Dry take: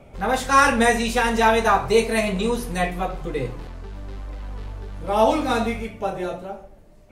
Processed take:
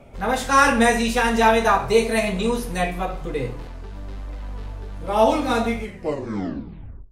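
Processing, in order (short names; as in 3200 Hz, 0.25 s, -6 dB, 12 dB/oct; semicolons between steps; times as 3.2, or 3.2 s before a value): tape stop at the end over 1.33 s; non-linear reverb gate 0.15 s falling, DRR 10 dB; ending taper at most 190 dB/s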